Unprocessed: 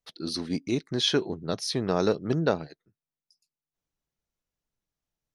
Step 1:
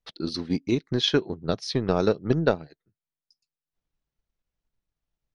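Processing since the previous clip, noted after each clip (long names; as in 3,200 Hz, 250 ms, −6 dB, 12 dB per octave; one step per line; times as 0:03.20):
transient designer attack +5 dB, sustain −5 dB
low-pass filter 4,900 Hz 12 dB per octave
low-shelf EQ 75 Hz +9.5 dB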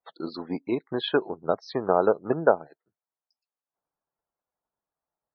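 harmonic generator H 8 −44 dB, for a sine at −7 dBFS
resonant band-pass 830 Hz, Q 1.4
spectral peaks only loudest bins 64
level +7.5 dB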